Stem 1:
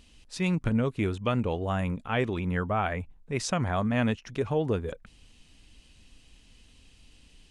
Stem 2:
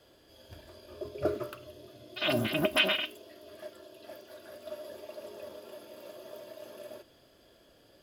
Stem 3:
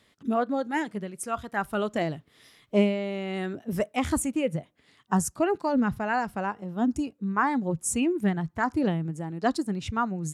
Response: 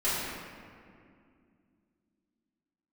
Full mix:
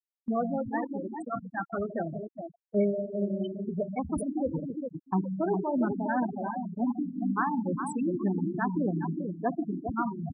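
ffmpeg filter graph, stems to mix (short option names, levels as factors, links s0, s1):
-filter_complex "[0:a]adynamicequalizer=threshold=0.0112:dfrequency=320:dqfactor=0.76:tfrequency=320:tqfactor=0.76:attack=5:release=100:ratio=0.375:range=1.5:mode=cutabove:tftype=bell,volume=0.224,asplit=3[s0][s1][s2];[s0]atrim=end=1.97,asetpts=PTS-STARTPTS,afade=t=out:st=1.966:d=0.004:c=hsin[s3];[s1]atrim=start=1.97:end=4.44,asetpts=PTS-STARTPTS,volume=0[s4];[s2]atrim=start=4.44,asetpts=PTS-STARTPTS,afade=t=in:d=0.004:c=hsin[s5];[s3][s4][s5]concat=n=3:v=0:a=1[s6];[1:a]adelay=650,volume=0.158,asplit=3[s7][s8][s9];[s8]volume=0.133[s10];[s9]volume=0.422[s11];[2:a]volume=0.562,asplit=3[s12][s13][s14];[s13]volume=0.158[s15];[s14]volume=0.596[s16];[3:a]atrim=start_sample=2205[s17];[s10][s15]amix=inputs=2:normalize=0[s18];[s18][s17]afir=irnorm=-1:irlink=0[s19];[s11][s16]amix=inputs=2:normalize=0,aecho=0:1:408|816|1224|1632|2040|2448:1|0.45|0.202|0.0911|0.041|0.0185[s20];[s6][s7][s12][s19][s20]amix=inputs=5:normalize=0,afftfilt=real='re*gte(hypot(re,im),0.1)':imag='im*gte(hypot(re,im),0.1)':win_size=1024:overlap=0.75,agate=range=0.398:threshold=0.00891:ratio=16:detection=peak"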